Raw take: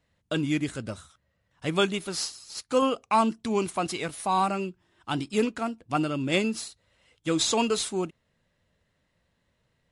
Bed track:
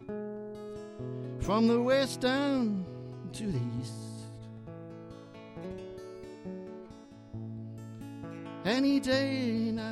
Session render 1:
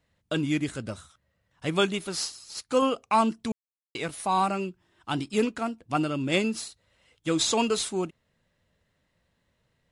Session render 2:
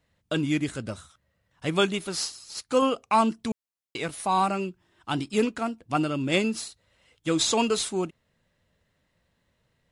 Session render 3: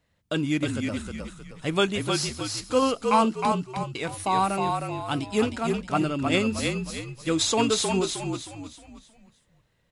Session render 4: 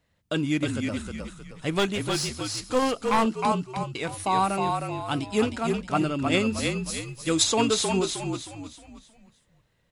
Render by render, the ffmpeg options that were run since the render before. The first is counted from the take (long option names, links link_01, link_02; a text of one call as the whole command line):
ffmpeg -i in.wav -filter_complex "[0:a]asplit=3[link_01][link_02][link_03];[link_01]atrim=end=3.52,asetpts=PTS-STARTPTS,afade=type=out:start_time=3.516:duration=0.004:curve=hsin[link_04];[link_02]atrim=start=3.52:end=3.95,asetpts=PTS-STARTPTS,volume=0[link_05];[link_03]atrim=start=3.95,asetpts=PTS-STARTPTS,afade=type=in:duration=0.004:curve=hsin[link_06];[link_04][link_05][link_06]concat=n=3:v=0:a=1" out.wav
ffmpeg -i in.wav -af "volume=1dB" out.wav
ffmpeg -i in.wav -filter_complex "[0:a]asplit=6[link_01][link_02][link_03][link_04][link_05][link_06];[link_02]adelay=312,afreqshift=-43,volume=-4dB[link_07];[link_03]adelay=624,afreqshift=-86,volume=-12.2dB[link_08];[link_04]adelay=936,afreqshift=-129,volume=-20.4dB[link_09];[link_05]adelay=1248,afreqshift=-172,volume=-28.5dB[link_10];[link_06]adelay=1560,afreqshift=-215,volume=-36.7dB[link_11];[link_01][link_07][link_08][link_09][link_10][link_11]amix=inputs=6:normalize=0" out.wav
ffmpeg -i in.wav -filter_complex "[0:a]asettb=1/sr,asplit=3[link_01][link_02][link_03];[link_01]atrim=end=1.714[link_04];[link_02]atrim=start=1.71:end=3.26,asetpts=PTS-STARTPTS,afade=type=in:duration=0.004:curve=qsin,afade=type=out:start_time=1.546:duration=0.004:curve=qsin,aeval=exprs='clip(val(0),-1,0.0631)':channel_layout=same[link_05];[link_03]atrim=start=3.256[link_06];[link_04][link_05]acrossfade=duration=0.004:curve1=hsin:curve2=qsin[link_07];[link_07][link_06]acrossfade=duration=0.004:curve1=qsin:curve2=hsin,asettb=1/sr,asplit=3[link_08][link_09][link_10];[link_08]atrim=end=6.864[link_11];[link_09]atrim=start=6.86:end=7.44,asetpts=PTS-STARTPTS,afade=type=in:duration=0.004:curve=qsin,afade=type=out:start_time=0.576:duration=0.004:curve=qsin,highshelf=frequency=6100:gain=10[link_12];[link_10]atrim=start=7.436[link_13];[link_11][link_12]acrossfade=duration=0.004:curve1=hsin:curve2=qsin[link_14];[link_14][link_13]acrossfade=duration=0.004:curve1=qsin:curve2=hsin" out.wav